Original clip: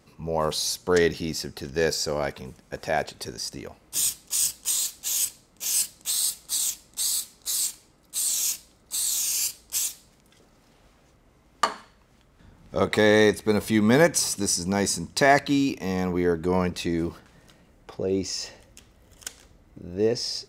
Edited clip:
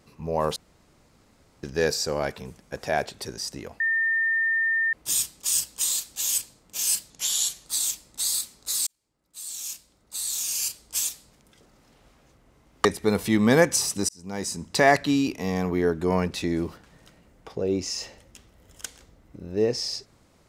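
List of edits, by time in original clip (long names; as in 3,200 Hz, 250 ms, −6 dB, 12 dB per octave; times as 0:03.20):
0:00.56–0:01.63: fill with room tone
0:03.80: insert tone 1,810 Hz −20.5 dBFS 1.13 s
0:05.97–0:06.45: play speed 86%
0:07.66–0:09.76: fade in
0:11.64–0:13.27: remove
0:14.51–0:15.21: fade in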